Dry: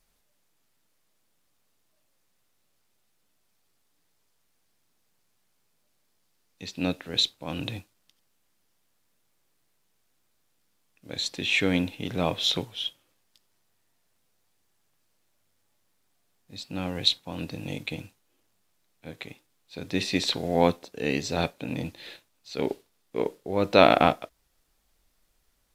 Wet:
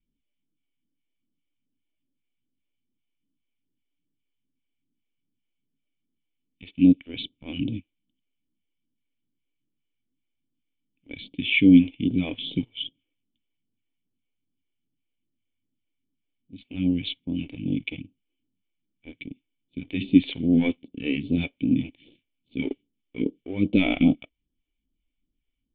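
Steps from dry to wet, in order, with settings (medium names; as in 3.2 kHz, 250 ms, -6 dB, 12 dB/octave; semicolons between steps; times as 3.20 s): waveshaping leveller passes 2; phase shifter stages 2, 2.5 Hz, lowest notch 150–1900 Hz; cascade formant filter i; trim +8.5 dB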